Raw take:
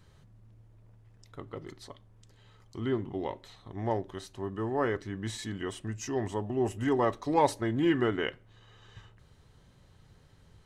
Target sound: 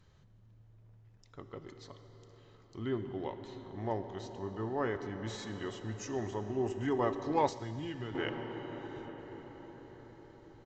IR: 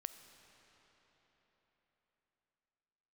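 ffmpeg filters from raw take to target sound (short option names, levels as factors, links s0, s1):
-filter_complex "[0:a]aresample=16000,aresample=44100[s0];[1:a]atrim=start_sample=2205,asetrate=26019,aresample=44100[s1];[s0][s1]afir=irnorm=-1:irlink=0,asettb=1/sr,asplit=3[s2][s3][s4];[s2]atrim=end=7.484[s5];[s3]atrim=start=7.48:end=8.15,asetpts=PTS-STARTPTS,afade=t=in:d=0.004:c=qsin,afade=t=out:st=0.666:d=0.004:c=qsin,acrossover=split=150|3000[s6][s7][s8];[s7]acompressor=threshold=0.00794:ratio=3[s9];[s6][s9][s8]amix=inputs=3:normalize=0[s10];[s4]atrim=start=8.146[s11];[s5][s10]acrossfade=d=0.004:c1=hsin:c2=qsin[s12];[s12][s11]acrossfade=d=0.004:c1=qsin:c2=hsin,volume=0.668"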